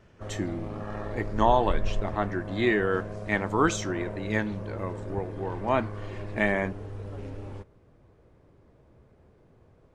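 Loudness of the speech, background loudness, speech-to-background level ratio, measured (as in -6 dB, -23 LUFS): -28.5 LUFS, -37.5 LUFS, 9.0 dB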